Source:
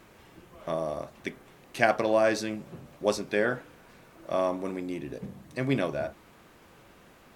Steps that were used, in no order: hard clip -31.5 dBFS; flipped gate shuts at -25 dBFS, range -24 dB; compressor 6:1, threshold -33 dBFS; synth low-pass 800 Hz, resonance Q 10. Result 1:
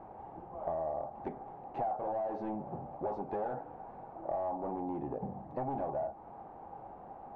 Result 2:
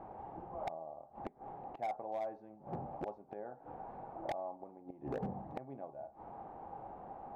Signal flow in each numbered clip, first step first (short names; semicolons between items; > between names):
hard clip > flipped gate > synth low-pass > compressor; flipped gate > synth low-pass > hard clip > compressor